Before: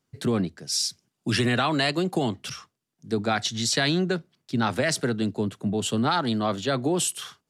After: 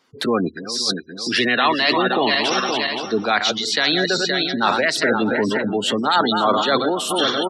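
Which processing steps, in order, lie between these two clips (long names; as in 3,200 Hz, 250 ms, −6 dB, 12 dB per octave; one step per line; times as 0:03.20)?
feedback delay that plays each chunk backwards 261 ms, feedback 57%, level −8 dB
gate on every frequency bin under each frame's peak −25 dB strong
spectral tilt +2.5 dB per octave
transient designer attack −2 dB, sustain +3 dB
reversed playback
downward compressor 6 to 1, threshold −32 dBFS, peak gain reduction 14.5 dB
reversed playback
graphic EQ with 10 bands 125 Hz −4 dB, 250 Hz +8 dB, 500 Hz +8 dB, 1,000 Hz +10 dB, 2,000 Hz +8 dB, 4,000 Hz +8 dB, 8,000 Hz −6 dB
on a send: single-tap delay 538 ms −20 dB
on the sum: level +7 dB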